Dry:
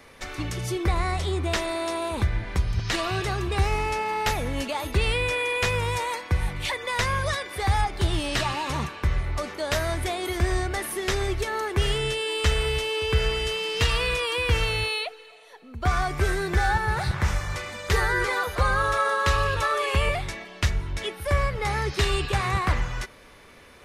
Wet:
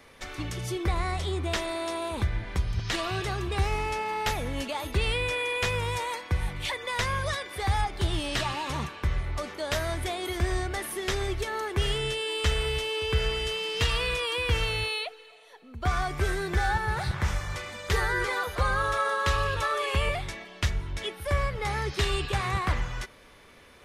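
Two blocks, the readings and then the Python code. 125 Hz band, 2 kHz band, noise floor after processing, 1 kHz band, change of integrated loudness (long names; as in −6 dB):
−3.5 dB, −3.5 dB, −53 dBFS, −3.5 dB, −3.5 dB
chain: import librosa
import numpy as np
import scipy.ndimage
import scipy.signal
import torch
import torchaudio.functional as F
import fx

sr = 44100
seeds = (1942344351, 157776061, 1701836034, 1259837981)

y = fx.peak_eq(x, sr, hz=3300.0, db=3.0, octaves=0.22)
y = y * 10.0 ** (-3.5 / 20.0)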